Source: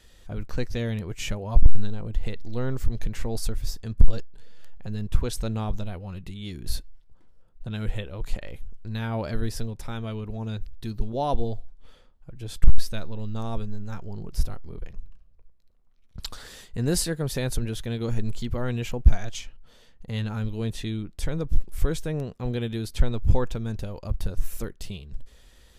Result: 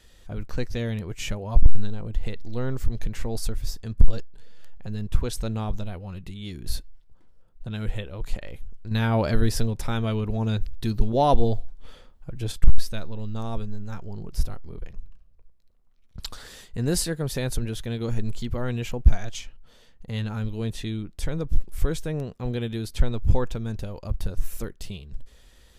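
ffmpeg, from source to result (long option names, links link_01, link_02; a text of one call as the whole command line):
ffmpeg -i in.wav -filter_complex "[0:a]asettb=1/sr,asplit=3[link_01][link_02][link_03];[link_01]atrim=end=8.914[link_04];[link_02]atrim=start=8.91:end=12.52,asetpts=PTS-STARTPTS,afade=type=in:duration=0.004:curve=qsin,afade=type=out:start_time=3.606:duration=0.004:curve=qsin,acontrast=73[link_05];[link_03]atrim=start=12.516[link_06];[link_04][link_05]acrossfade=duration=0.004:curve1=hsin:curve2=qsin[link_07];[link_07][link_06]acrossfade=duration=0.004:curve1=qsin:curve2=hsin" out.wav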